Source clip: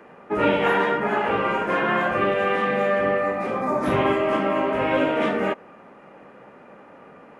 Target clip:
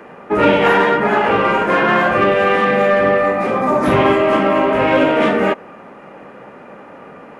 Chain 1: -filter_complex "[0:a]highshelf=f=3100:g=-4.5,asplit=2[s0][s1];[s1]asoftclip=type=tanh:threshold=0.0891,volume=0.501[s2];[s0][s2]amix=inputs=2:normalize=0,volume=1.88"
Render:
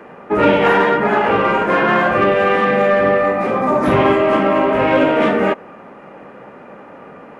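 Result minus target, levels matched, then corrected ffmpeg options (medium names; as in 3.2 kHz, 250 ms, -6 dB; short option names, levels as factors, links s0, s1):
8 kHz band -3.5 dB
-filter_complex "[0:a]asplit=2[s0][s1];[s1]asoftclip=type=tanh:threshold=0.0891,volume=0.501[s2];[s0][s2]amix=inputs=2:normalize=0,volume=1.88"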